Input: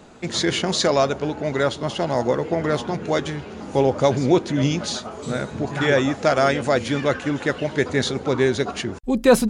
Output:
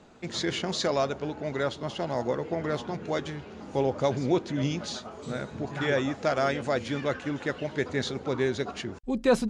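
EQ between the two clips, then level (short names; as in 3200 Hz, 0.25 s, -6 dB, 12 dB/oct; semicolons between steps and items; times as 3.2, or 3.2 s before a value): LPF 7200 Hz 12 dB/oct; -8.0 dB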